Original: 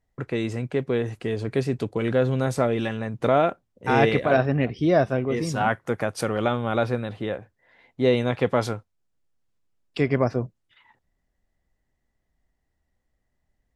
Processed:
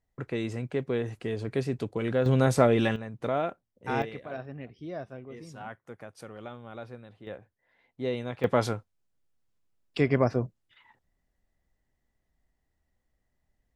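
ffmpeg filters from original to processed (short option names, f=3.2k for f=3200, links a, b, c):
-af "asetnsamples=n=441:p=0,asendcmd='2.26 volume volume 1.5dB;2.96 volume volume -9dB;4.02 volume volume -18.5dB;7.27 volume volume -11dB;8.44 volume volume -2dB',volume=-5dB"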